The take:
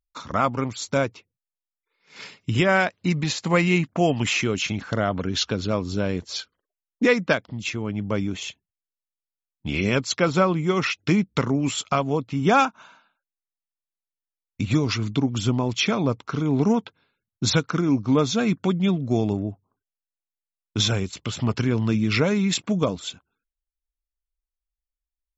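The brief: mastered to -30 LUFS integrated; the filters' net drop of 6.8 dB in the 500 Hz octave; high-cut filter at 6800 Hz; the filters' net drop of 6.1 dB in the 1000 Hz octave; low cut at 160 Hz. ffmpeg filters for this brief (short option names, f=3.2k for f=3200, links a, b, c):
-af "highpass=160,lowpass=6.8k,equalizer=f=500:t=o:g=-7,equalizer=f=1k:t=o:g=-6.5,volume=-3dB"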